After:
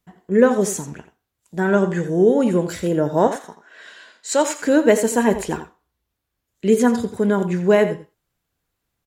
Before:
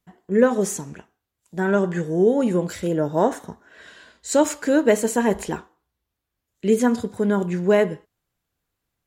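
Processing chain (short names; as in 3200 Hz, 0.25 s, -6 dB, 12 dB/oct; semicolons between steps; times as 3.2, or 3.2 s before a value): 3.27–4.6 weighting filter A; echo 86 ms -12.5 dB; gain +2.5 dB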